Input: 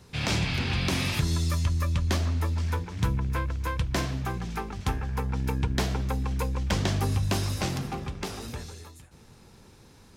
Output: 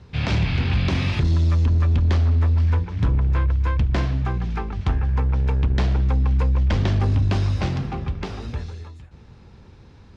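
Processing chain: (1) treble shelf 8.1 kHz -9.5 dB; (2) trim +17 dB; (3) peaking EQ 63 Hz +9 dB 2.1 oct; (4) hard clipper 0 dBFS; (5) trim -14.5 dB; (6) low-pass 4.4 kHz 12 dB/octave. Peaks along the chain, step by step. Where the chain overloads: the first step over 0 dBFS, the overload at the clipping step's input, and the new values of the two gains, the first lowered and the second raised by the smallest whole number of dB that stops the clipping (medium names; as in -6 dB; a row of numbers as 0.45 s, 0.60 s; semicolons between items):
-16.5 dBFS, +0.5 dBFS, +8.0 dBFS, 0.0 dBFS, -14.5 dBFS, -14.0 dBFS; step 2, 8.0 dB; step 2 +9 dB, step 5 -6.5 dB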